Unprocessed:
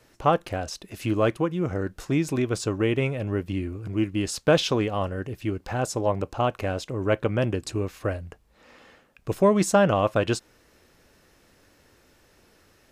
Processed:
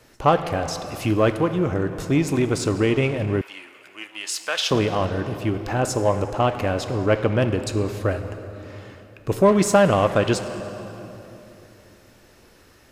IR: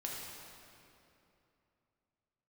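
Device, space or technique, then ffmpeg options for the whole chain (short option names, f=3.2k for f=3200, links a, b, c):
saturated reverb return: -filter_complex "[0:a]asplit=2[a][b];[1:a]atrim=start_sample=2205[c];[b][c]afir=irnorm=-1:irlink=0,asoftclip=type=tanh:threshold=-24.5dB,volume=-3dB[d];[a][d]amix=inputs=2:normalize=0,asettb=1/sr,asplit=3[e][f][g];[e]atrim=end=3.414[h];[f]atrim=start=3.41:end=4.71,asetpts=PTS-STARTPTS,afade=t=in:d=0.004:c=qsin,afade=t=out:st=1.296:d=0.004:c=qsin,highpass=1.3k[i];[g]atrim=start=4.706[j];[h][i]acrossfade=d=0.004:c1=hsin:c2=qsin[k];[k][j]acrossfade=d=0.004:c1=qsin:c2=hsin,volume=2dB"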